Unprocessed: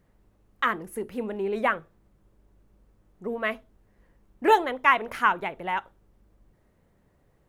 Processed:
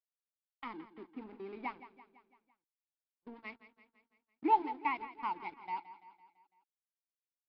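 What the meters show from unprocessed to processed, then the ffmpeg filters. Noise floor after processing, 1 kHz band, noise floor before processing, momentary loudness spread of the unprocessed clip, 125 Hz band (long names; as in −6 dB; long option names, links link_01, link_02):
below −85 dBFS, −10.0 dB, −65 dBFS, 12 LU, can't be measured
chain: -filter_complex "[0:a]asplit=3[link_01][link_02][link_03];[link_01]bandpass=frequency=300:width_type=q:width=8,volume=0dB[link_04];[link_02]bandpass=frequency=870:width_type=q:width=8,volume=-6dB[link_05];[link_03]bandpass=frequency=2240:width_type=q:width=8,volume=-9dB[link_06];[link_04][link_05][link_06]amix=inputs=3:normalize=0,aeval=exprs='sgn(val(0))*max(abs(val(0))-0.00188,0)':channel_layout=same,agate=range=-25dB:threshold=-51dB:ratio=16:detection=peak,asplit=2[link_07][link_08];[link_08]aecho=0:1:168|336|504|672|840:0.188|0.104|0.057|0.0313|0.0172[link_09];[link_07][link_09]amix=inputs=2:normalize=0,aresample=11025,aresample=44100"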